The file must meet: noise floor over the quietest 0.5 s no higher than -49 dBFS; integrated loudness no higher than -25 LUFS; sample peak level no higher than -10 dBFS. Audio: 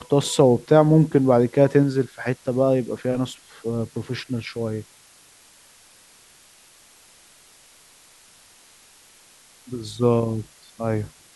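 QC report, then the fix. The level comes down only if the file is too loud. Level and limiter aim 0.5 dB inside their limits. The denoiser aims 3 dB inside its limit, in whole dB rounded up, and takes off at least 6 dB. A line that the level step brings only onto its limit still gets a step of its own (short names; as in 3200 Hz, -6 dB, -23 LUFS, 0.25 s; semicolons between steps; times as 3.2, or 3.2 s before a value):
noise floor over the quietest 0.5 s -53 dBFS: OK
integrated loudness -21.5 LUFS: fail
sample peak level -2.5 dBFS: fail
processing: gain -4 dB; limiter -10.5 dBFS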